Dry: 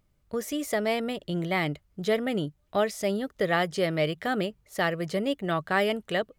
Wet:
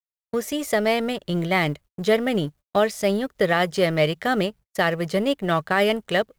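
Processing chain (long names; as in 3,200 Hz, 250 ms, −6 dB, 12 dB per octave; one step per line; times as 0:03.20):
mu-law and A-law mismatch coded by A
noise gate −48 dBFS, range −49 dB
parametric band 310 Hz −3 dB 0.28 octaves
boost into a limiter +14.5 dB
level −7.5 dB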